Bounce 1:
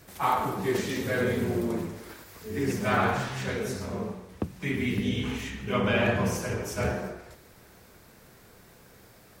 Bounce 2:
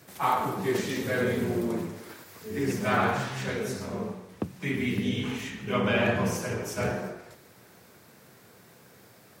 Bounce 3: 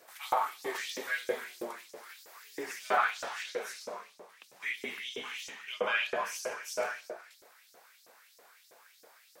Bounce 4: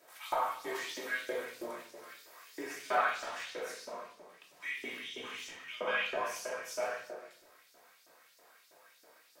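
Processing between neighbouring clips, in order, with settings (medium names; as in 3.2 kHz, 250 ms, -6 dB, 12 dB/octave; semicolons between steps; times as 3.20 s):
high-pass 99 Hz 24 dB/octave
LFO high-pass saw up 3.1 Hz 440–6000 Hz; trim -5 dB
simulated room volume 610 m³, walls furnished, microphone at 2.8 m; trim -6 dB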